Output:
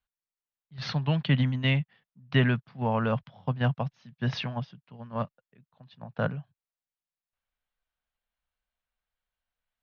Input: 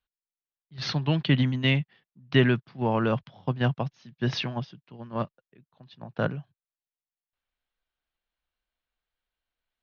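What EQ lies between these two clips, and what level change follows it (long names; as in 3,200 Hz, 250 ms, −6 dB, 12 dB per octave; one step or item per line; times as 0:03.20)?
parametric band 340 Hz −12 dB 0.47 octaves
high-shelf EQ 3,800 Hz −9 dB
0.0 dB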